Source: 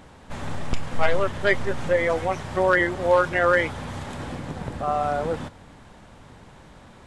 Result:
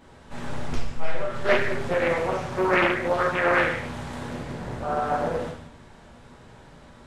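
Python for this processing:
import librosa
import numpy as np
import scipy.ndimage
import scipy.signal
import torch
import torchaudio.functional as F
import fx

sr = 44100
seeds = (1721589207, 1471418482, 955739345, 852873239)

y = fx.comb_fb(x, sr, f0_hz=150.0, decay_s=0.28, harmonics='all', damping=0.0, mix_pct=70, at=(0.74, 1.29), fade=0.02)
y = fx.rev_gated(y, sr, seeds[0], gate_ms=270, shape='falling', drr_db=-7.0)
y = fx.doppler_dist(y, sr, depth_ms=0.48)
y = y * librosa.db_to_amplitude(-8.5)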